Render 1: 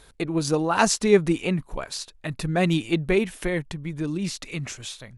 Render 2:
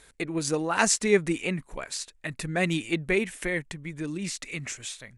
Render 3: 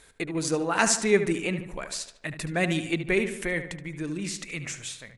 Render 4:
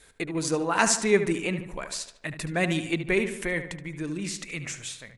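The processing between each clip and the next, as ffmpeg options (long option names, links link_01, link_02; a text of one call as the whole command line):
ffmpeg -i in.wav -af "equalizer=frequency=250:width_type=o:width=1:gain=3,equalizer=frequency=500:width_type=o:width=1:gain=3,equalizer=frequency=2000:width_type=o:width=1:gain=10,equalizer=frequency=8000:width_type=o:width=1:gain=11,volume=-8dB" out.wav
ffmpeg -i in.wav -filter_complex "[0:a]asplit=2[link_01][link_02];[link_02]adelay=74,lowpass=frequency=3000:poles=1,volume=-9.5dB,asplit=2[link_03][link_04];[link_04]adelay=74,lowpass=frequency=3000:poles=1,volume=0.55,asplit=2[link_05][link_06];[link_06]adelay=74,lowpass=frequency=3000:poles=1,volume=0.55,asplit=2[link_07][link_08];[link_08]adelay=74,lowpass=frequency=3000:poles=1,volume=0.55,asplit=2[link_09][link_10];[link_10]adelay=74,lowpass=frequency=3000:poles=1,volume=0.55,asplit=2[link_11][link_12];[link_12]adelay=74,lowpass=frequency=3000:poles=1,volume=0.55[link_13];[link_01][link_03][link_05][link_07][link_09][link_11][link_13]amix=inputs=7:normalize=0" out.wav
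ffmpeg -i in.wav -af "adynamicequalizer=threshold=0.00316:dfrequency=1000:dqfactor=7.1:tfrequency=1000:tqfactor=7.1:attack=5:release=100:ratio=0.375:range=2.5:mode=boostabove:tftype=bell" out.wav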